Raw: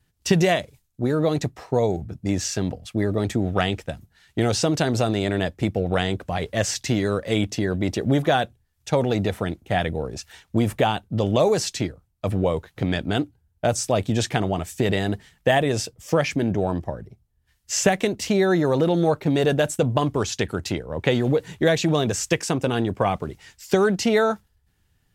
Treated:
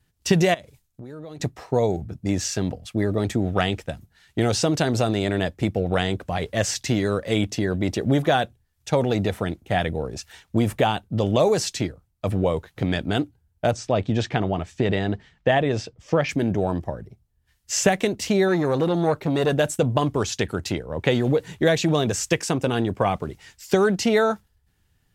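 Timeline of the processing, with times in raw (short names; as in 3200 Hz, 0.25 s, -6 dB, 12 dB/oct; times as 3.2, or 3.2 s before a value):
0.54–1.4 compressor 8:1, threshold -35 dBFS
13.71–16.29 air absorption 140 m
18.48–19.53 core saturation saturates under 470 Hz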